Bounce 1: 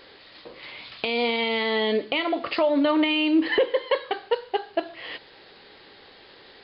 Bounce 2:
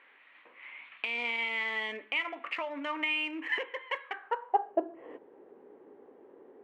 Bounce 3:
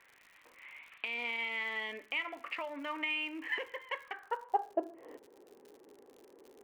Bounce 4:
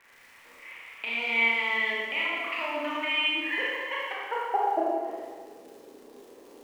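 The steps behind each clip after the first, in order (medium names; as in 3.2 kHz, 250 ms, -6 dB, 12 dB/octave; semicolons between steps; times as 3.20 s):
local Wiener filter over 9 samples; fifteen-band graphic EQ 250 Hz +9 dB, 1 kHz +6 dB, 4 kHz -8 dB; band-pass sweep 2.3 kHz -> 410 Hz, 4.07–4.87 s
crackle 94 per s -43 dBFS; trim -4 dB
Schroeder reverb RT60 1.6 s, combs from 27 ms, DRR -6 dB; trim +2 dB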